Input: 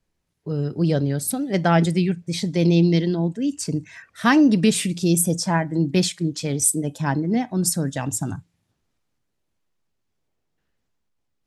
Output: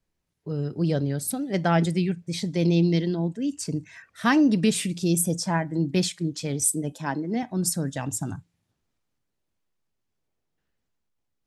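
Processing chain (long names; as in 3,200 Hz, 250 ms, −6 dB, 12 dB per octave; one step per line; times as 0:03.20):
0:06.92–0:07.43: high-pass filter 210 Hz
level −4 dB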